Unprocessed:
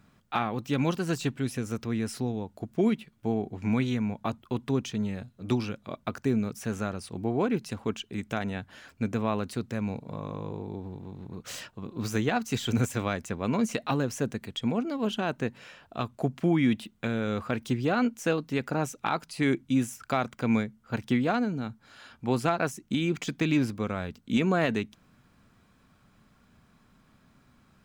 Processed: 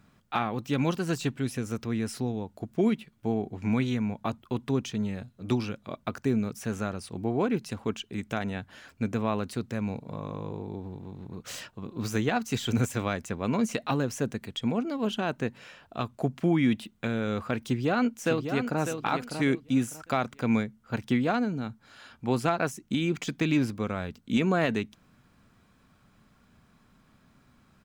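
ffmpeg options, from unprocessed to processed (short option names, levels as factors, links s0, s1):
-filter_complex "[0:a]asplit=2[s0][s1];[s1]afade=t=in:st=17.63:d=0.01,afade=t=out:st=18.81:d=0.01,aecho=0:1:600|1200|1800:0.421697|0.105424|0.026356[s2];[s0][s2]amix=inputs=2:normalize=0"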